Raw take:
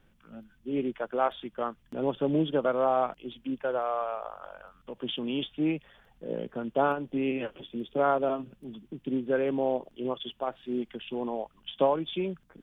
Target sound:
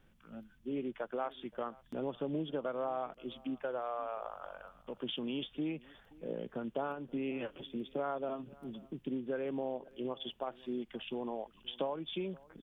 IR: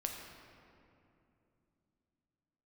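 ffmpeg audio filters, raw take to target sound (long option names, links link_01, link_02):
-filter_complex "[0:a]acompressor=threshold=-33dB:ratio=3,asplit=2[link_01][link_02];[link_02]aecho=0:1:527:0.0708[link_03];[link_01][link_03]amix=inputs=2:normalize=0,volume=-2.5dB"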